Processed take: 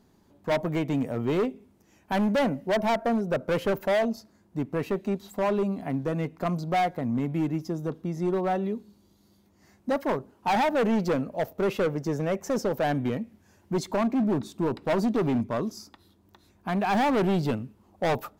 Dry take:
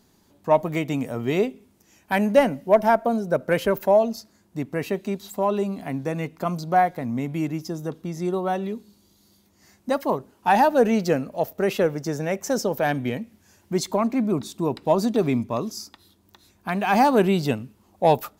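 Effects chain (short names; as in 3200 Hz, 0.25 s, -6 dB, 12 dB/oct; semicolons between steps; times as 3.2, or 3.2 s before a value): high shelf 2300 Hz -10 dB; hard clip -21 dBFS, distortion -7 dB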